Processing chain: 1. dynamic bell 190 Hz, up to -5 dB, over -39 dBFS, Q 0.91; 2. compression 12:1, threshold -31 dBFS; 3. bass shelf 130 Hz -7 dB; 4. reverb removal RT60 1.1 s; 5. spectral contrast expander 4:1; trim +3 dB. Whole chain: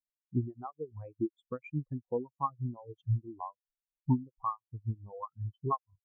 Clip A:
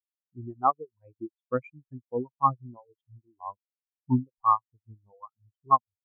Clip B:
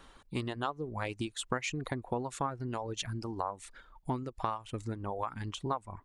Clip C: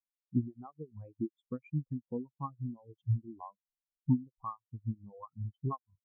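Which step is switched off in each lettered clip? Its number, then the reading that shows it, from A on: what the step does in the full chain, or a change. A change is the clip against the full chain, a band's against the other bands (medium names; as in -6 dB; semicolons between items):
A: 2, mean gain reduction 4.5 dB; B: 5, 2 kHz band +17.0 dB; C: 1, 250 Hz band +8.0 dB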